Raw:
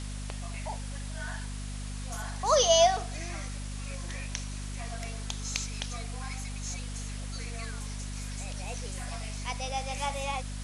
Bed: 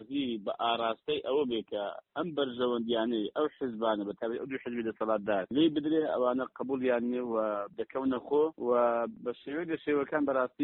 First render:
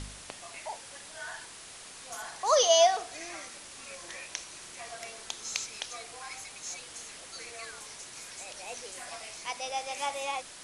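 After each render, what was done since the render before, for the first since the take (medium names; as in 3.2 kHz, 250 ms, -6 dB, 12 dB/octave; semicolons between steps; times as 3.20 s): de-hum 50 Hz, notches 5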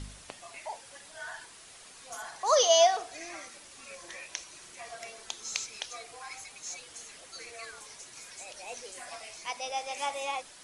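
noise reduction 6 dB, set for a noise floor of -48 dBFS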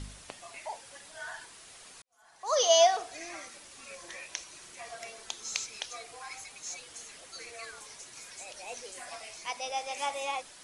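2.02–2.70 s: fade in quadratic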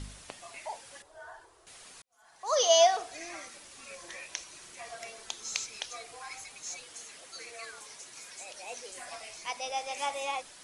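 1.02–1.67 s: FFT filter 100 Hz 0 dB, 210 Hz -24 dB, 350 Hz +2 dB, 1.1 kHz -3 dB, 2.2 kHz -15 dB; 6.86–8.92 s: bass shelf 100 Hz -10.5 dB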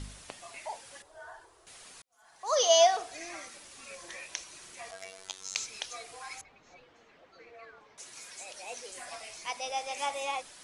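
4.91–5.56 s: robot voice 95.3 Hz; 6.41–7.98 s: tape spacing loss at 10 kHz 44 dB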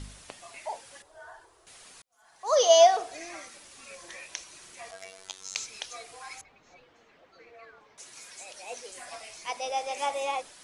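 dynamic bell 490 Hz, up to +6 dB, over -45 dBFS, Q 0.73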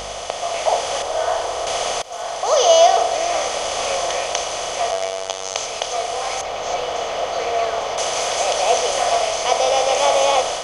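spectral levelling over time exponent 0.4; level rider gain up to 8 dB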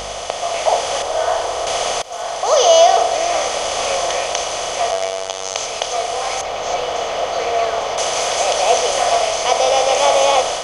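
trim +2.5 dB; peak limiter -1 dBFS, peak gain reduction 2.5 dB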